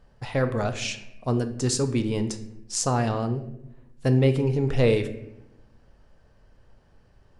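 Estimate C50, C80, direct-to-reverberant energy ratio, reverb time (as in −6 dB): 12.0 dB, 14.5 dB, 8.0 dB, 0.85 s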